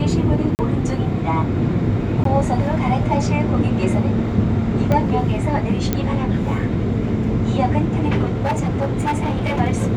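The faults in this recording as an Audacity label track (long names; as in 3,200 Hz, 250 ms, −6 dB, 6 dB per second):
0.550000	0.590000	drop-out 39 ms
2.240000	2.250000	drop-out 13 ms
4.920000	4.920000	click −8 dBFS
5.930000	5.930000	click −5 dBFS
8.280000	9.610000	clipping −16 dBFS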